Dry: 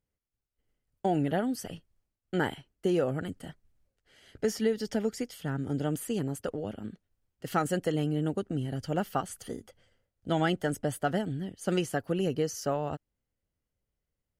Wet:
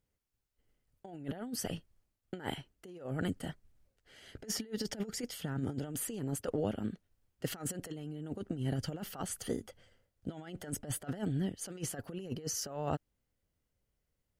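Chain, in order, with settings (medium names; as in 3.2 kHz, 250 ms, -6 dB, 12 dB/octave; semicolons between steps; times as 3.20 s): compressor with a negative ratio -34 dBFS, ratio -0.5; trim -2.5 dB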